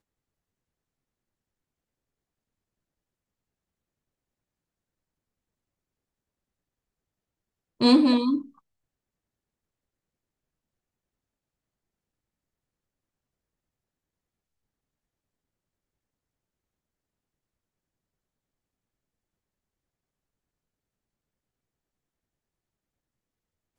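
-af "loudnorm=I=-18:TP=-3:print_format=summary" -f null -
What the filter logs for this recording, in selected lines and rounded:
Input Integrated:    -21.5 LUFS
Input True Peak:      -7.1 dBTP
Input LRA:             4.1 LU
Input Threshold:     -32.3 LUFS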